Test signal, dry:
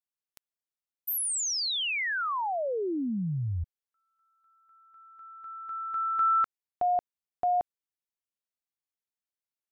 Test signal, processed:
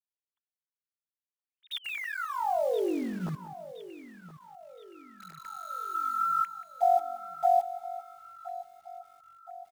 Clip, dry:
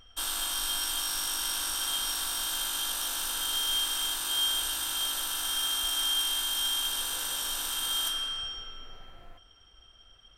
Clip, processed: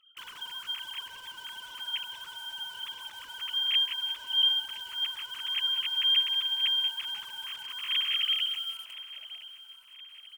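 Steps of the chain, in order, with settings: formants replaced by sine waves; in parallel at -3 dB: bit crusher 7-bit; on the sum: feedback delay 1020 ms, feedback 50%, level -16 dB; bit-crushed delay 183 ms, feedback 35%, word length 8-bit, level -14.5 dB; trim -5.5 dB

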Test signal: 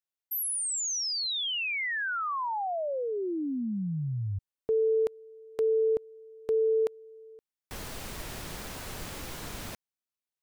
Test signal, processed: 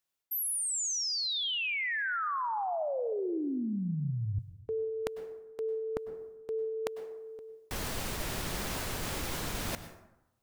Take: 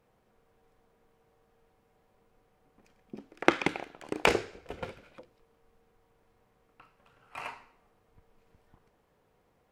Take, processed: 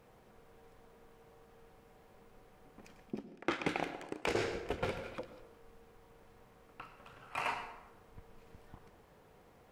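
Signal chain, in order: reverse; compression 12:1, threshold -39 dBFS; reverse; plate-style reverb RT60 0.94 s, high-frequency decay 0.5×, pre-delay 90 ms, DRR 11 dB; trim +7.5 dB

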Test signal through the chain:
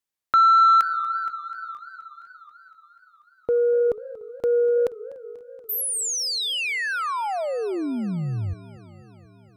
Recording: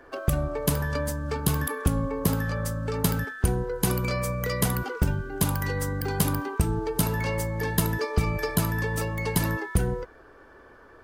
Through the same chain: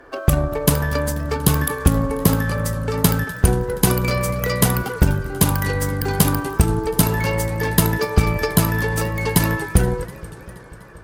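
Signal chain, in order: Chebyshev shaper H 7 -27 dB, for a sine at -11 dBFS; modulated delay 241 ms, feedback 72%, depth 213 cents, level -19 dB; trim +8.5 dB

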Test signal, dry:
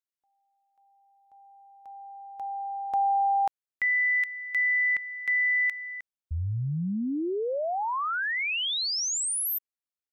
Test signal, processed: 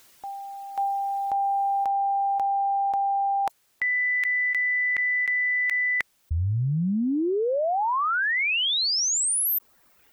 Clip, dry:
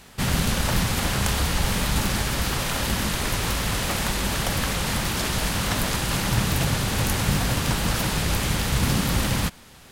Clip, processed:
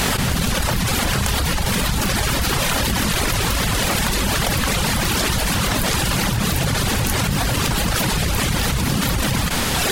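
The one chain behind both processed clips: reverb removal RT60 0.97 s; level flattener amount 100%

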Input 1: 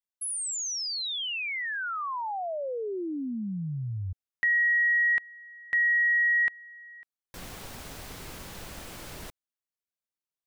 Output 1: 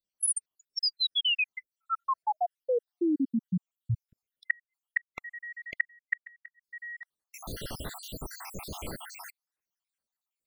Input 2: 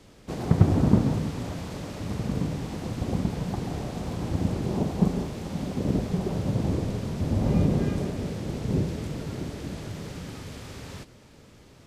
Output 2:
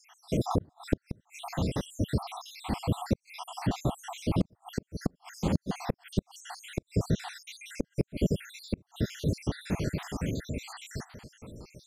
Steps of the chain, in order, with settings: random holes in the spectrogram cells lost 74%; inverted gate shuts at -21 dBFS, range -40 dB; trim +7.5 dB

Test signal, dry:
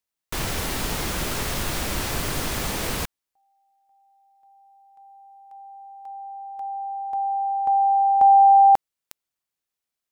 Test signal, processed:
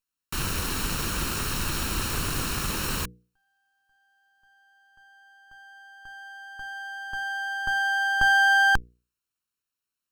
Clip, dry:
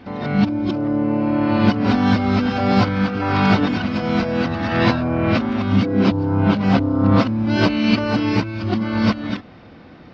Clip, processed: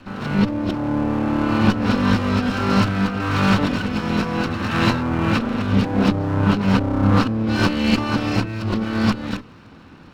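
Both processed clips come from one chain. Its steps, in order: comb filter that takes the minimum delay 0.73 ms; hum notches 60/120/180/240/300/360/420/480 Hz

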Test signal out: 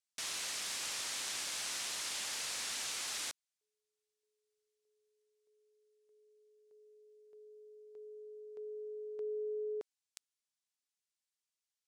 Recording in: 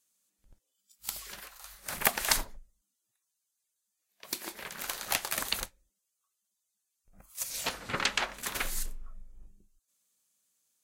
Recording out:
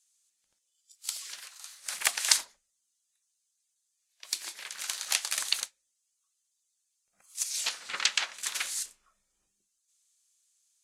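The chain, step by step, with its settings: frequency weighting ITU-R 468; trim -6 dB

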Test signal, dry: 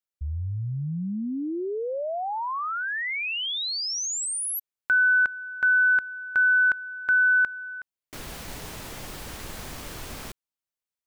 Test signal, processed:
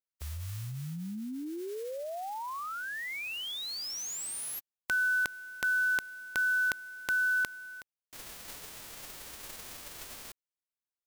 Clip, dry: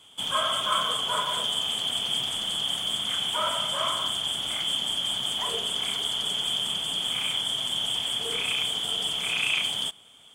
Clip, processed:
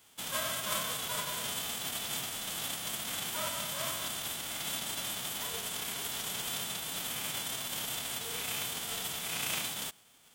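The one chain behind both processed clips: formants flattened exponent 0.3; trim -8.5 dB

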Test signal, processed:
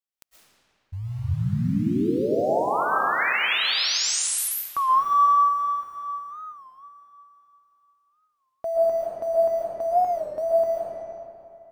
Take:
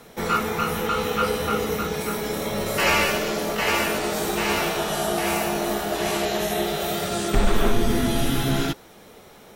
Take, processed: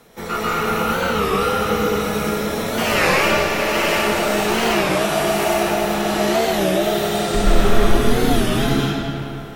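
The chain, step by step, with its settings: in parallel at -10 dB: short-mantissa float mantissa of 2-bit; on the sum: algorithmic reverb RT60 2.7 s, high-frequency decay 0.7×, pre-delay 90 ms, DRR -7.5 dB; warped record 33 1/3 rpm, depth 160 cents; trim -5.5 dB

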